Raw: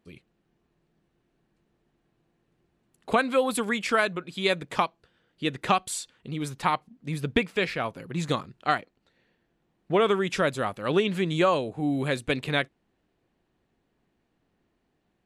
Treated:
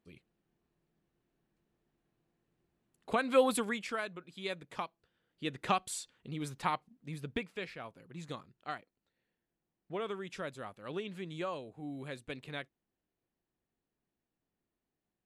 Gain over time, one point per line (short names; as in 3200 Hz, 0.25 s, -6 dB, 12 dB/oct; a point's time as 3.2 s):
3.21 s -8.5 dB
3.41 s -1.5 dB
3.97 s -14 dB
4.81 s -14 dB
5.72 s -7.5 dB
6.61 s -7.5 dB
7.78 s -16 dB